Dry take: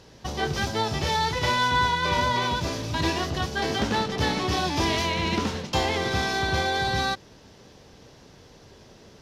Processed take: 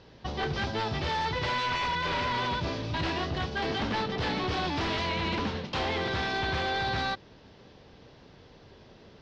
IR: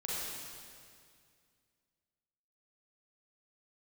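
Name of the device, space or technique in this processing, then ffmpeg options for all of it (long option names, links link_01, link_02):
synthesiser wavefolder: -af "aeval=exprs='0.0841*(abs(mod(val(0)/0.0841+3,4)-2)-1)':channel_layout=same,lowpass=frequency=4500:width=0.5412,lowpass=frequency=4500:width=1.3066,volume=-2.5dB"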